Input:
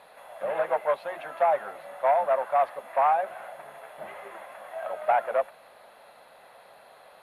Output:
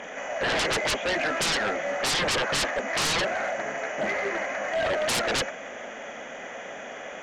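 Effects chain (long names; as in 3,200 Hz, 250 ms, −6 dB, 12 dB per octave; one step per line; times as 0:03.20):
hearing-aid frequency compression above 2,200 Hz 1.5 to 1
octave-band graphic EQ 125/250/1,000/2,000/4,000 Hz −6/+11/−9/+7/−3 dB
sine wavefolder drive 20 dB, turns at −13.5 dBFS
level −8.5 dB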